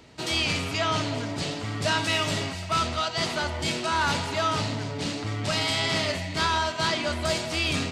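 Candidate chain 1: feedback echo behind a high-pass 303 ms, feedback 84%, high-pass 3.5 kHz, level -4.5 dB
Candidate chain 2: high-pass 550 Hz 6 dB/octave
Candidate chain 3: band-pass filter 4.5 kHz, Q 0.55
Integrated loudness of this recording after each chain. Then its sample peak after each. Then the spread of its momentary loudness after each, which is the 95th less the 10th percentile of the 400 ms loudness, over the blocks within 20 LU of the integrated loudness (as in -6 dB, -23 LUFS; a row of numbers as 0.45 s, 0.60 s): -25.5 LUFS, -27.5 LUFS, -29.5 LUFS; -12.0 dBFS, -13.5 dBFS, -15.5 dBFS; 5 LU, 8 LU, 9 LU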